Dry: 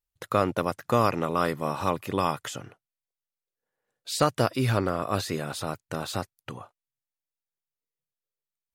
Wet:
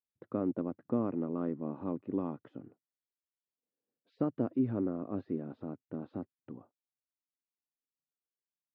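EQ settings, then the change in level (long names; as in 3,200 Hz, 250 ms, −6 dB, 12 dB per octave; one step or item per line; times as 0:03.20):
resonant band-pass 270 Hz, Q 2.7
high-frequency loss of the air 320 metres
+1.0 dB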